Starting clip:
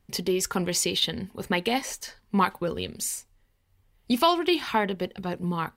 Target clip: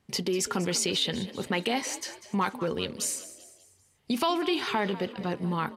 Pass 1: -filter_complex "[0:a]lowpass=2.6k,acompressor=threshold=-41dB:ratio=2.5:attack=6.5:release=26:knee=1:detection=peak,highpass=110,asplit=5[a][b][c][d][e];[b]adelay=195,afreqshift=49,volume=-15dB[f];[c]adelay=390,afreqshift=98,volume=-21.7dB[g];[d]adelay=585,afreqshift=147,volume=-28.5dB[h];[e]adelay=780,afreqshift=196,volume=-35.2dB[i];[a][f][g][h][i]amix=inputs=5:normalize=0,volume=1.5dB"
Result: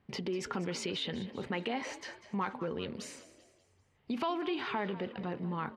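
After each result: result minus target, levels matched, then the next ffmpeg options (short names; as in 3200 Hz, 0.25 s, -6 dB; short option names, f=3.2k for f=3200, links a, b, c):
8000 Hz band -9.0 dB; compressor: peak gain reduction +6.5 dB
-filter_complex "[0:a]lowpass=10k,acompressor=threshold=-41dB:ratio=2.5:attack=6.5:release=26:knee=1:detection=peak,highpass=110,asplit=5[a][b][c][d][e];[b]adelay=195,afreqshift=49,volume=-15dB[f];[c]adelay=390,afreqshift=98,volume=-21.7dB[g];[d]adelay=585,afreqshift=147,volume=-28.5dB[h];[e]adelay=780,afreqshift=196,volume=-35.2dB[i];[a][f][g][h][i]amix=inputs=5:normalize=0,volume=1.5dB"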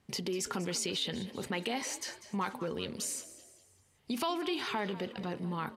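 compressor: peak gain reduction +7 dB
-filter_complex "[0:a]lowpass=10k,acompressor=threshold=-29.5dB:ratio=2.5:attack=6.5:release=26:knee=1:detection=peak,highpass=110,asplit=5[a][b][c][d][e];[b]adelay=195,afreqshift=49,volume=-15dB[f];[c]adelay=390,afreqshift=98,volume=-21.7dB[g];[d]adelay=585,afreqshift=147,volume=-28.5dB[h];[e]adelay=780,afreqshift=196,volume=-35.2dB[i];[a][f][g][h][i]amix=inputs=5:normalize=0,volume=1.5dB"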